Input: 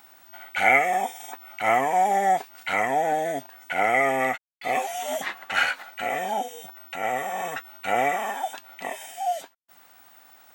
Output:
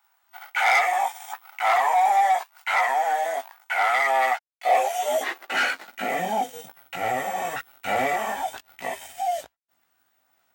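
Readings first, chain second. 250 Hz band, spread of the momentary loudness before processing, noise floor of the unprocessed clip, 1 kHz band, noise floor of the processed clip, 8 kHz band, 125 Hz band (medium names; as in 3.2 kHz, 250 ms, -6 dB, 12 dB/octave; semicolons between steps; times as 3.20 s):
-4.0 dB, 14 LU, -55 dBFS, +2.0 dB, -70 dBFS, +1.0 dB, -3.5 dB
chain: chorus voices 2, 0.72 Hz, delay 17 ms, depth 2 ms; waveshaping leveller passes 3; high-pass sweep 950 Hz -> 64 Hz, 4.16–7.48 s; trim -7 dB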